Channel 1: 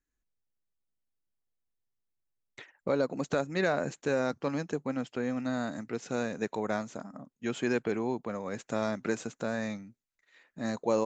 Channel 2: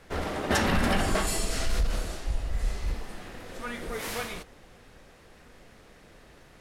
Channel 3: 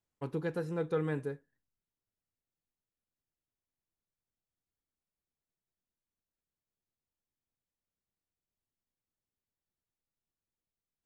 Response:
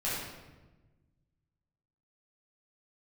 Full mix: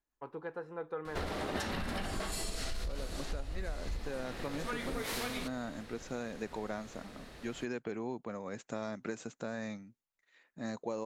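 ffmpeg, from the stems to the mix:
-filter_complex "[0:a]volume=0.562[s0];[1:a]equalizer=f=4100:w=3.2:g=5,adelay=1050,volume=1.19[s1];[2:a]bandpass=f=970:t=q:w=1.2:csg=0,volume=1.12[s2];[s0][s1][s2]amix=inputs=3:normalize=0,acompressor=threshold=0.0224:ratio=16"

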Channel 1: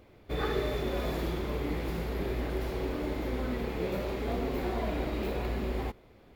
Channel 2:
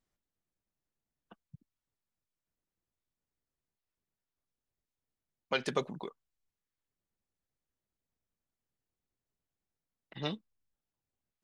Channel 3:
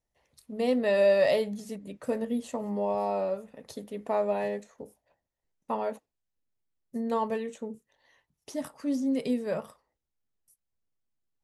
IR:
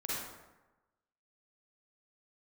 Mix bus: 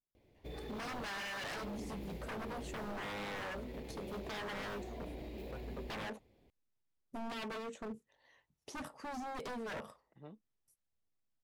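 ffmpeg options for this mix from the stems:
-filter_complex "[0:a]equalizer=f=1300:w=2.1:g=-13,alimiter=level_in=1.33:limit=0.0631:level=0:latency=1:release=27,volume=0.75,adelay=150,volume=0.282[s0];[1:a]lowpass=1100,volume=0.168[s1];[2:a]acompressor=threshold=0.0355:ratio=3,highshelf=f=8200:g=-10.5,adelay=200,volume=0.75[s2];[s0][s1][s2]amix=inputs=3:normalize=0,aeval=exprs='0.0141*(abs(mod(val(0)/0.0141+3,4)-2)-1)':c=same"

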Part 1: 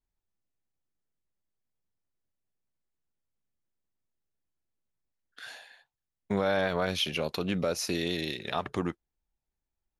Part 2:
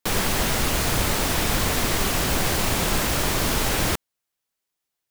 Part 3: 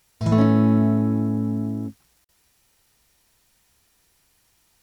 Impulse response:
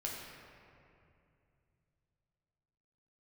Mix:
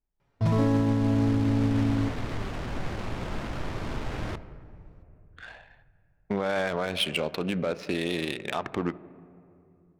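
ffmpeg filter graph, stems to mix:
-filter_complex "[0:a]equalizer=f=100:t=o:w=0.67:g=-6,equalizer=f=2500:t=o:w=0.67:g=3,equalizer=f=6300:t=o:w=0.67:g=-7,volume=1.26,asplit=2[s0][s1];[s1]volume=0.211[s2];[1:a]bass=f=250:g=3,treble=f=4000:g=3,adelay=400,volume=0.224,asplit=2[s3][s4];[s4]volume=0.447[s5];[2:a]aecho=1:1:7.1:0.49,adelay=200,volume=0.891,asplit=2[s6][s7];[s7]volume=0.251[s8];[3:a]atrim=start_sample=2205[s9];[s2][s5][s8]amix=inputs=3:normalize=0[s10];[s10][s9]afir=irnorm=-1:irlink=0[s11];[s0][s3][s6][s11]amix=inputs=4:normalize=0,adynamicsmooth=sensitivity=3.5:basefreq=1400,alimiter=limit=0.15:level=0:latency=1:release=62"

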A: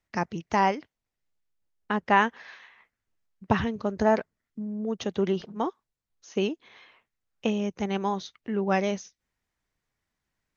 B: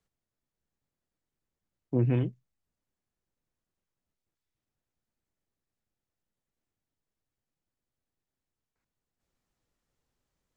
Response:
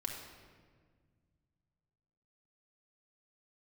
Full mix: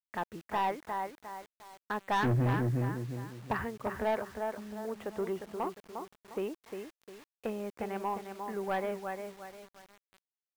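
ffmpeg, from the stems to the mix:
-filter_complex "[0:a]equalizer=f=160:w=0.64:g=-11,volume=0.75,asplit=2[s0][s1];[s1]volume=0.422[s2];[1:a]adelay=300,volume=1.41,asplit=2[s3][s4];[s4]volume=0.501[s5];[s2][s5]amix=inputs=2:normalize=0,aecho=0:1:354|708|1062|1416|1770:1|0.33|0.109|0.0359|0.0119[s6];[s0][s3][s6]amix=inputs=3:normalize=0,lowpass=f=2000:w=0.5412,lowpass=f=2000:w=1.3066,asoftclip=type=tanh:threshold=0.0631,acrusher=bits=8:mix=0:aa=0.000001"

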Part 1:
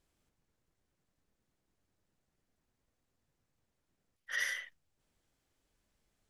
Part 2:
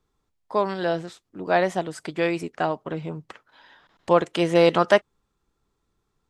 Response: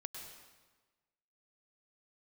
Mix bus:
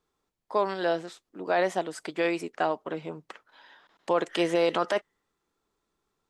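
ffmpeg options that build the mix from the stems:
-filter_complex "[0:a]lowpass=f=1800:p=1,volume=0.335,asplit=2[s0][s1];[s1]volume=0.631[s2];[1:a]highpass=270,volume=0.841[s3];[2:a]atrim=start_sample=2205[s4];[s2][s4]afir=irnorm=-1:irlink=0[s5];[s0][s3][s5]amix=inputs=3:normalize=0,alimiter=limit=0.2:level=0:latency=1:release=24"

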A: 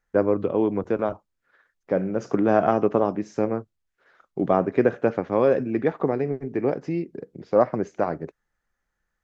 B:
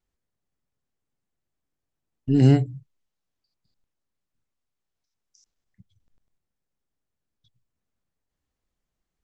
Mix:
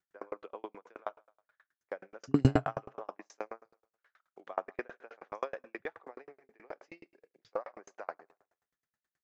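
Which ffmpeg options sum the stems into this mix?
-filter_complex "[0:a]highpass=900,adynamicequalizer=threshold=0.00708:dfrequency=2200:dqfactor=0.7:tfrequency=2200:tqfactor=0.7:attack=5:release=100:ratio=0.375:range=2:mode=cutabove:tftype=highshelf,volume=0.944,asplit=2[s0][s1];[s1]volume=0.126[s2];[1:a]volume=1,asplit=2[s3][s4];[s4]volume=0.106[s5];[s2][s5]amix=inputs=2:normalize=0,aecho=0:1:82|164|246|328|410|492|574:1|0.48|0.23|0.111|0.0531|0.0255|0.0122[s6];[s0][s3][s6]amix=inputs=3:normalize=0,highpass=110,aeval=exprs='val(0)*pow(10,-40*if(lt(mod(9.4*n/s,1),2*abs(9.4)/1000),1-mod(9.4*n/s,1)/(2*abs(9.4)/1000),(mod(9.4*n/s,1)-2*abs(9.4)/1000)/(1-2*abs(9.4)/1000))/20)':c=same"

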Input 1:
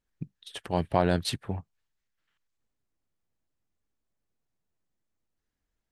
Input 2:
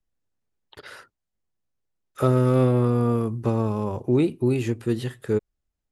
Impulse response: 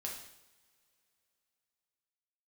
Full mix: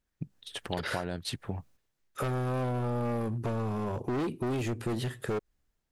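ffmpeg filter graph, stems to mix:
-filter_complex "[0:a]volume=1.12,asplit=2[s0][s1];[1:a]dynaudnorm=f=150:g=5:m=4.47,volume=6.68,asoftclip=hard,volume=0.15,volume=1.26[s2];[s1]apad=whole_len=261044[s3];[s2][s3]sidechaingate=range=0.398:threshold=0.00178:ratio=16:detection=peak[s4];[s0][s4]amix=inputs=2:normalize=0,acompressor=threshold=0.0316:ratio=6"

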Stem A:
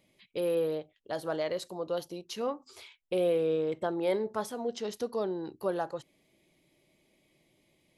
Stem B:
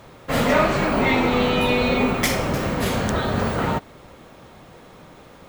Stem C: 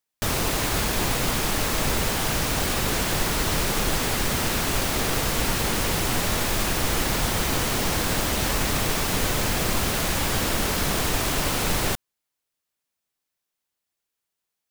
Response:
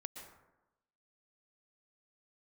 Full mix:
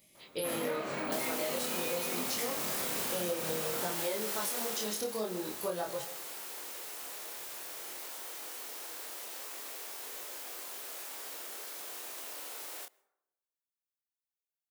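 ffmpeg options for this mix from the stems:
-filter_complex "[0:a]highshelf=f=3300:g=10,flanger=delay=17.5:depth=5.7:speed=0.29,volume=1.41,asplit=2[s0][s1];[s1]volume=0.531[s2];[1:a]highpass=200,adelay=150,volume=0.282[s3];[2:a]highpass=f=370:w=0.5412,highpass=f=370:w=1.3066,adelay=900,volume=0.398,afade=t=out:st=4.59:d=0.39:silence=0.266073,asplit=2[s4][s5];[s5]volume=0.15[s6];[3:a]atrim=start_sample=2205[s7];[s2][s6]amix=inputs=2:normalize=0[s8];[s8][s7]afir=irnorm=-1:irlink=0[s9];[s0][s3][s4][s9]amix=inputs=4:normalize=0,highshelf=f=8000:g=11.5,flanger=delay=22.5:depth=6.4:speed=0.5,acompressor=threshold=0.0282:ratio=6"

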